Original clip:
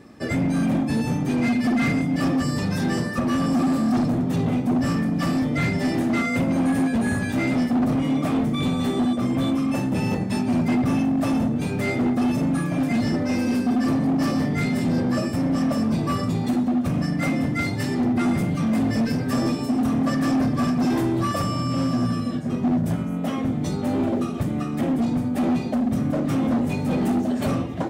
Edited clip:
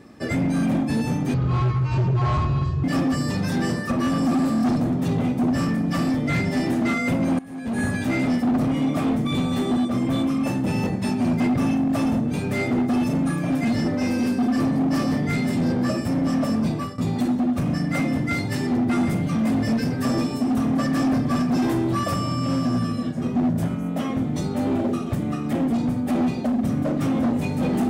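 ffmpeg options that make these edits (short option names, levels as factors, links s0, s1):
-filter_complex "[0:a]asplit=5[s0][s1][s2][s3][s4];[s0]atrim=end=1.344[s5];[s1]atrim=start=1.34:end=2.12,asetpts=PTS-STARTPTS,asetrate=22932,aresample=44100[s6];[s2]atrim=start=2.116:end=6.67,asetpts=PTS-STARTPTS,afade=t=out:st=4.55:d=0.004:c=hsin:silence=0.0944061[s7];[s3]atrim=start=6.67:end=16.26,asetpts=PTS-STARTPTS,afade=t=in:d=0.43:c=qua:silence=0.0944061,afade=t=out:st=9.3:d=0.29:silence=0.133352[s8];[s4]atrim=start=16.26,asetpts=PTS-STARTPTS,afade=t=in:d=0.004:c=hsin:silence=0.133352[s9];[s5][s6]acrossfade=d=0.004:c1=hsin:c2=hsin[s10];[s7][s8][s9]concat=n=3:v=0:a=1[s11];[s10][s11]acrossfade=d=0.004:c1=hsin:c2=hsin"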